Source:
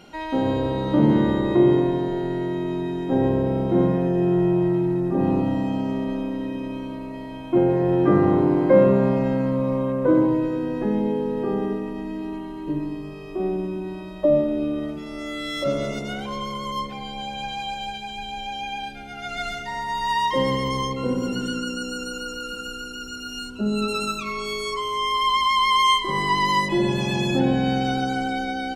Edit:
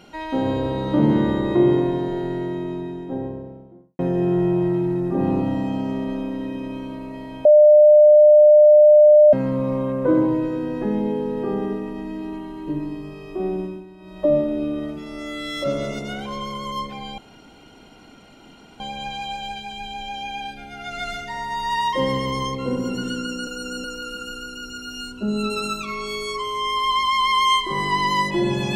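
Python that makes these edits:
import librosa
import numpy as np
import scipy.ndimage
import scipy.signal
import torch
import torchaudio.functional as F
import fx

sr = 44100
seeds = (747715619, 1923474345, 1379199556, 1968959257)

y = fx.studio_fade_out(x, sr, start_s=2.18, length_s=1.81)
y = fx.edit(y, sr, fx.bleep(start_s=7.45, length_s=1.88, hz=601.0, db=-7.0),
    fx.fade_down_up(start_s=13.61, length_s=0.62, db=-11.5, fade_s=0.25),
    fx.insert_room_tone(at_s=17.18, length_s=1.62),
    fx.reverse_span(start_s=21.85, length_s=0.37), tone=tone)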